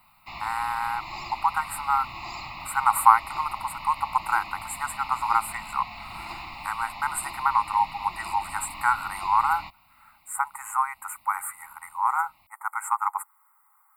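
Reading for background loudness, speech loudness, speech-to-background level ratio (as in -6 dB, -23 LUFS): -38.0 LUFS, -26.5 LUFS, 11.5 dB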